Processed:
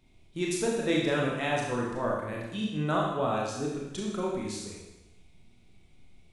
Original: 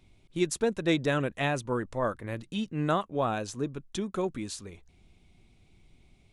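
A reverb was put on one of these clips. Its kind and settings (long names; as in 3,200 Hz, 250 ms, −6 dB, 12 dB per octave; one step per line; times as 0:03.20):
four-comb reverb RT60 1 s, combs from 26 ms, DRR −3 dB
level −4 dB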